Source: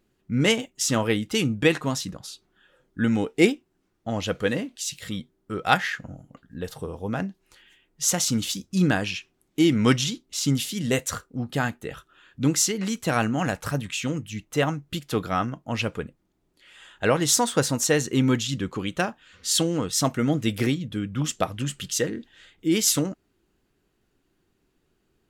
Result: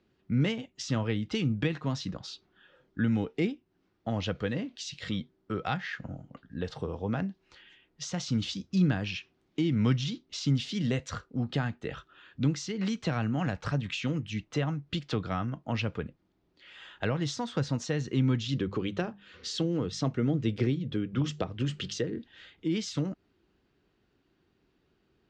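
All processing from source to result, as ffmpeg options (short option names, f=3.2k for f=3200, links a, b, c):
-filter_complex "[0:a]asettb=1/sr,asplit=3[a][b][c];[a]atrim=end=18.424[d];[b]atrim=start=18.42:end=22.18,asetpts=PTS-STARTPTS,afade=t=in:d=0.004:c=qsin,afade=t=out:st=3.756:d=0.004:c=qsin,equalizer=f=400:t=o:w=0.76:g=8.5,bandreject=f=50:t=h:w=6,bandreject=f=100:t=h:w=6,bandreject=f=150:t=h:w=6,bandreject=f=200:t=h:w=6[e];[c]atrim=start=22.176[f];[d][e]acrossfade=d=0.004:c1=hsin:c2=qsin[g];[g][f]acrossfade=d=0.004:c1=qsin:c2=hsin,highpass=42,acrossover=split=180[h][i];[i]acompressor=threshold=-31dB:ratio=5[j];[h][j]amix=inputs=2:normalize=0,lowpass=f=5.2k:w=0.5412,lowpass=f=5.2k:w=1.3066"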